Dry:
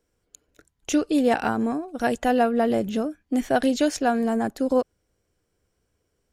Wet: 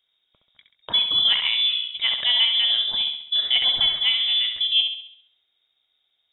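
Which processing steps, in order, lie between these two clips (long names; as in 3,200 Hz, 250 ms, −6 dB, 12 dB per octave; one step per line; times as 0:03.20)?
voice inversion scrambler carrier 3,700 Hz
flutter between parallel walls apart 11.5 metres, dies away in 0.64 s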